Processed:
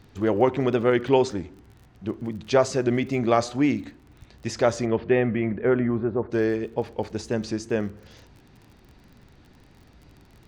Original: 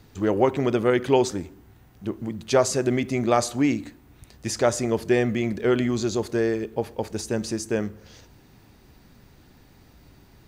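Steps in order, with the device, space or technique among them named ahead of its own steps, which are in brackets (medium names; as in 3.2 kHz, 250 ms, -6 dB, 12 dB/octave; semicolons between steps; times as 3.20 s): lo-fi chain (low-pass 4.7 kHz 12 dB/octave; wow and flutter; crackle 40 per s -41 dBFS); 4.85–6.30 s: low-pass 3.6 kHz -> 1.4 kHz 24 dB/octave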